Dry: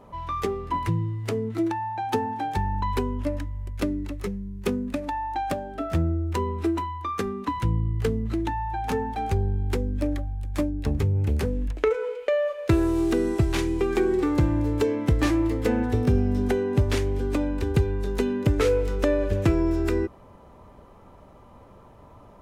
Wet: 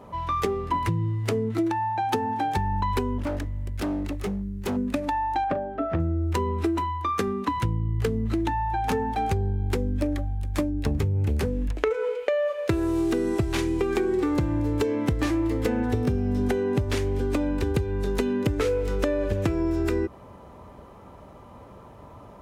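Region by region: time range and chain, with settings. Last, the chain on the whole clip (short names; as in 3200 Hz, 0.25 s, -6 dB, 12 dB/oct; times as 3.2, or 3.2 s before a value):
3.18–4.77 notch 980 Hz, Q 14 + overloaded stage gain 28.5 dB
5.44–6 LPF 1700 Hz + low shelf 140 Hz -6.5 dB + doubler 39 ms -13.5 dB
whole clip: HPF 47 Hz; compressor, threshold -25 dBFS; gain +4 dB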